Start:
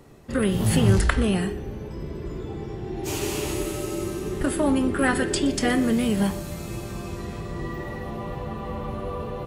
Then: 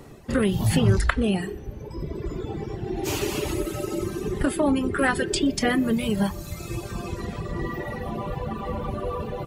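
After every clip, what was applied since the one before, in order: reverb removal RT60 1.8 s; dynamic bell 9 kHz, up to -5 dB, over -50 dBFS, Q 1.2; in parallel at +2 dB: compression, threshold -30 dBFS, peak gain reduction 15 dB; on the sum: trim -1.5 dB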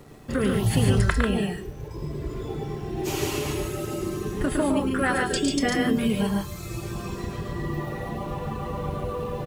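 in parallel at -9.5 dB: bit crusher 7-bit; on the sum: feedback comb 150 Hz, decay 0.8 s, harmonics odd, mix 70%; loudspeakers at several distances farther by 37 m -5 dB, 49 m -4 dB; trim +4.5 dB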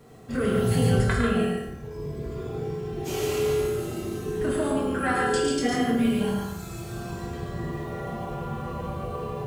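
reverberation RT60 0.90 s, pre-delay 3 ms, DRR -5 dB; trim -7.5 dB

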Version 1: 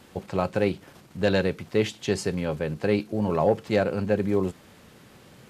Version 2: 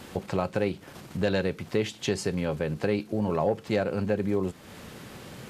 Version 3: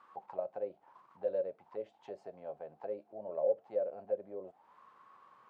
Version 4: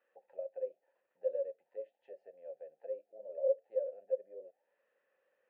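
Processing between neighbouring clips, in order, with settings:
compression 2:1, threshold -39 dBFS, peak gain reduction 12.5 dB; trim +7.5 dB
auto-wah 550–1200 Hz, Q 12, down, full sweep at -21.5 dBFS; trim +1 dB
vowel filter e; trim +1 dB

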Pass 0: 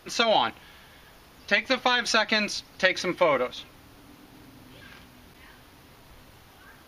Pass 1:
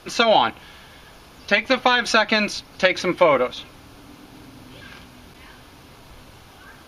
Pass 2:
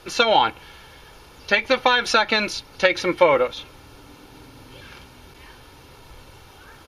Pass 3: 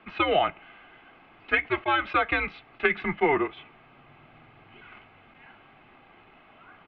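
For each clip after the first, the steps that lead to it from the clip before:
low-pass 12 kHz 12 dB/octave; band-stop 1.9 kHz, Q 11; dynamic bell 5.5 kHz, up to -5 dB, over -42 dBFS, Q 0.91; trim +6.5 dB
comb 2.2 ms, depth 40%; trim -1 dB
tilt EQ +2 dB/octave; mistuned SSB -150 Hz 150–2800 Hz; attacks held to a fixed rise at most 580 dB/s; trim -5 dB

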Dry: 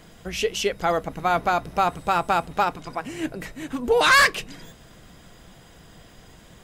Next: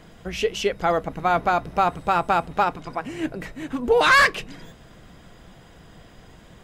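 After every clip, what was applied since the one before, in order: treble shelf 4.6 kHz -9 dB; trim +1.5 dB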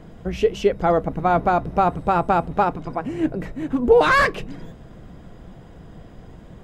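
tilt shelf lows +7 dB, about 1.1 kHz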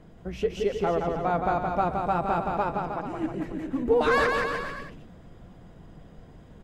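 bouncing-ball echo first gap 170 ms, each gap 0.85×, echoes 5; trim -8.5 dB

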